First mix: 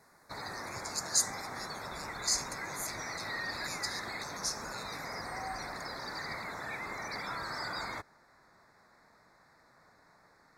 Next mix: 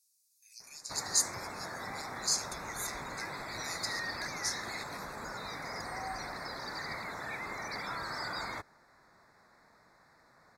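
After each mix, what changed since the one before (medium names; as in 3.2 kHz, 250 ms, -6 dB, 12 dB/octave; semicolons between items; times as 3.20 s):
background: entry +0.60 s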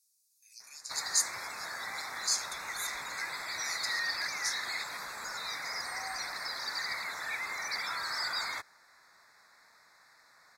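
background: add tilt shelf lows -8.5 dB, about 940 Hz; master: add bass shelf 470 Hz -5 dB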